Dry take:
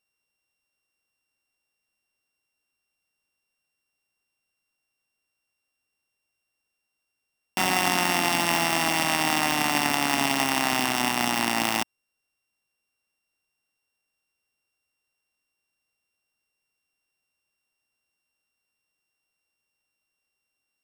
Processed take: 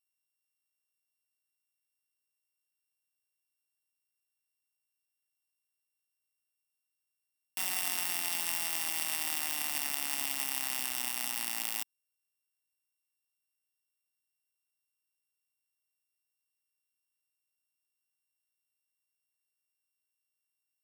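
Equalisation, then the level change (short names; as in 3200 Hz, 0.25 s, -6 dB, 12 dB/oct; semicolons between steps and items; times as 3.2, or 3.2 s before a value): pre-emphasis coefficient 0.9; bell 130 Hz -3 dB 1.3 oct; bell 6100 Hz -3.5 dB 0.68 oct; -4.0 dB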